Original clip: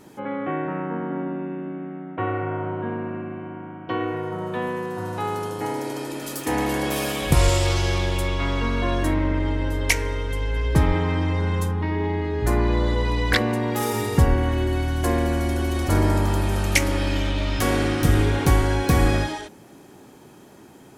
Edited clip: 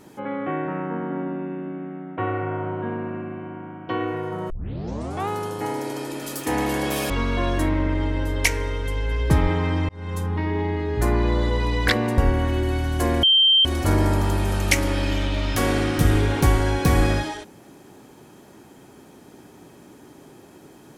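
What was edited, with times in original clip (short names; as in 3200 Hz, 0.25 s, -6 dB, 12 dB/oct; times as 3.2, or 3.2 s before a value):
4.5 tape start 0.78 s
7.1–8.55 cut
11.34–11.77 fade in
13.63–14.22 cut
15.27–15.69 bleep 3140 Hz -12.5 dBFS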